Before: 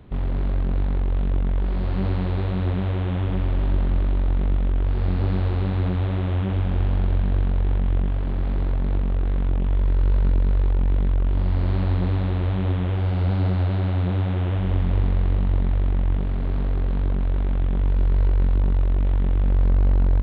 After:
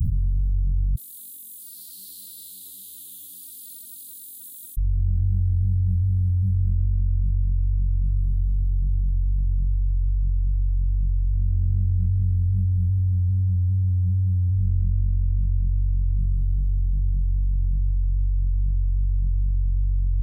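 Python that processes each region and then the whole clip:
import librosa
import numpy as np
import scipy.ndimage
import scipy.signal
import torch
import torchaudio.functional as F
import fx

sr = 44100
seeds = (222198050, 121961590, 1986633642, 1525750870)

y = fx.chain(x, sr, fx.highpass(hz=990.0, slope=24),
    fx.comb(ms=3.5, depth=0.82), at=(0.95, 4.77))
y = scipy.signal.sosfilt(scipy.signal.cheby2(4, 80, [610.0, 2400.0], 'bandstop', fs=sr, output='sos'), y)
y = fx.low_shelf(y, sr, hz=410.0, db=-4.5)
y = fx.env_flatten(y, sr, amount_pct=100)
y = y * 10.0 ** (-1.0 / 20.0)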